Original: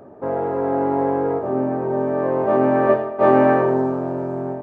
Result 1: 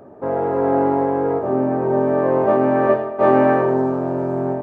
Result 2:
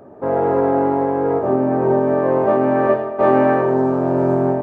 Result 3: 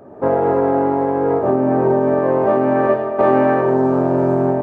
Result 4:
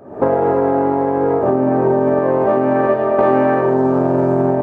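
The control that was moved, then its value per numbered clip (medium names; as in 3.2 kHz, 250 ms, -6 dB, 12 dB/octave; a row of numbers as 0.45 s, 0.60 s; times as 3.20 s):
recorder AGC, rising by: 5.3 dB/s, 14 dB/s, 35 dB/s, 86 dB/s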